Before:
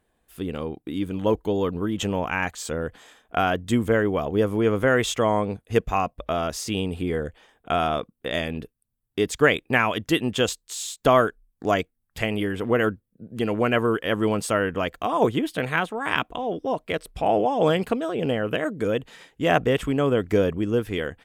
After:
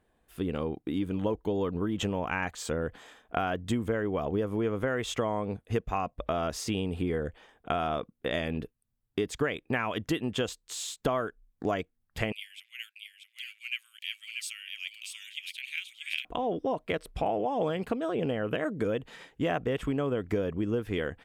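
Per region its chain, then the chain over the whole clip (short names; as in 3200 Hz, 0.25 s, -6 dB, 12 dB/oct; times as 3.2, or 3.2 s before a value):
12.32–16.25 Chebyshev high-pass 2300 Hz, order 5 + echo 0.636 s -5 dB
whole clip: high shelf 4200 Hz -7 dB; compressor, threshold -26 dBFS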